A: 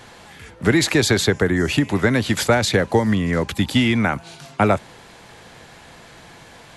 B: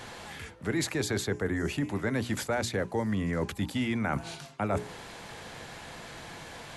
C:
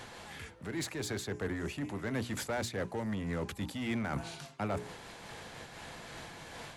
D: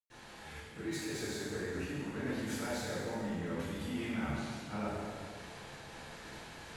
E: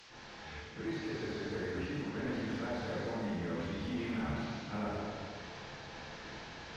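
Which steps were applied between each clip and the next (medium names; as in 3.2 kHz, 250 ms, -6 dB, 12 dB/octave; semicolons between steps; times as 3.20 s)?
hum notches 60/120/180/240/300/360/420 Hz; dynamic bell 3.6 kHz, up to -5 dB, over -38 dBFS, Q 0.98; reverse; compression 5:1, threshold -28 dBFS, peak gain reduction 15 dB; reverse
in parallel at -7.5 dB: wavefolder -32 dBFS; on the sum: random flutter of the level, depth 60%; trim -3 dB
reverberation RT60 2.0 s, pre-delay 100 ms; trim -3.5 dB
one-bit delta coder 32 kbps, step -51.5 dBFS; one-sided clip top -35.5 dBFS; trim +1.5 dB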